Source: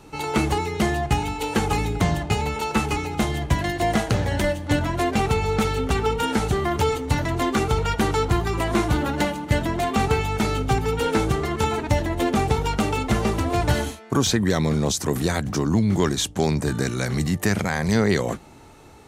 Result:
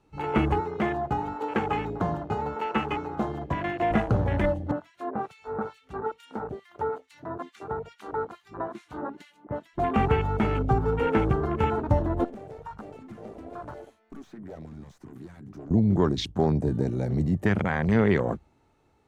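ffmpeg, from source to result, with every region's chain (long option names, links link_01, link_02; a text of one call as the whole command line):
ffmpeg -i in.wav -filter_complex "[0:a]asettb=1/sr,asplit=3[link_01][link_02][link_03];[link_01]atrim=end=0.604[link_04];[link_02]atrim=start=0.6:end=3.91,asetpts=PTS-STARTPTS,afade=type=in:duration=0.004:curve=qsin,afade=type=out:start_time=3.306:duration=0.004:curve=qsin,highpass=frequency=280:poles=1,equalizer=frequency=9800:width=2.9:gain=-6.5[link_05];[link_03]atrim=start=3.906[link_06];[link_04][link_05]acrossfade=duration=0.004:curve1=hsin:curve2=qsin[link_07];[link_07][link_06]acrossfade=duration=0.004:curve1=qsin:curve2=hsin,asettb=1/sr,asplit=3[link_08][link_09][link_10];[link_08]atrim=end=4.714[link_11];[link_09]atrim=start=4.71:end=9.78,asetpts=PTS-STARTPTS,afade=type=in:duration=0.004:curve=qsin,afade=type=out:start_time=5.066:duration=0.004:curve=qsin,highpass=frequency=580:poles=1,acrossover=split=1700[link_12][link_13];[link_12]aeval=exprs='val(0)*(1-1/2+1/2*cos(2*PI*2.3*n/s))':channel_layout=same[link_14];[link_13]aeval=exprs='val(0)*(1-1/2-1/2*cos(2*PI*2.3*n/s))':channel_layout=same[link_15];[link_14][link_15]amix=inputs=2:normalize=0[link_16];[link_10]atrim=start=9.776[link_17];[link_11][link_16]acrossfade=duration=0.004:curve1=hsin:curve2=qsin[link_18];[link_18][link_17]acrossfade=duration=0.004:curve1=qsin:curve2=hsin,asettb=1/sr,asplit=3[link_19][link_20][link_21];[link_19]atrim=end=12.244[link_22];[link_20]atrim=start=12.24:end=15.71,asetpts=PTS-STARTPTS,afade=type=in:duration=0.004:curve=qsin,afade=type=out:start_time=3.466:duration=0.004:curve=qsin,highpass=frequency=250:poles=1,aeval=exprs='(tanh(20*val(0)+0.55)-tanh(0.55))/20':channel_layout=same,acrossover=split=690|2200|5700[link_23][link_24][link_25][link_26];[link_23]acompressor=threshold=-38dB:ratio=3[link_27];[link_24]acompressor=threshold=-35dB:ratio=3[link_28];[link_25]acompressor=threshold=-52dB:ratio=3[link_29];[link_26]acompressor=threshold=-46dB:ratio=3[link_30];[link_27][link_28][link_29][link_30]amix=inputs=4:normalize=0[link_31];[link_21]atrim=start=15.706[link_32];[link_22][link_31]acrossfade=duration=0.004:curve1=hsin:curve2=qsin[link_33];[link_33][link_32]acrossfade=duration=0.004:curve1=qsin:curve2=hsin,afwtdn=0.0398,highshelf=frequency=5200:gain=-10.5,volume=-1.5dB" out.wav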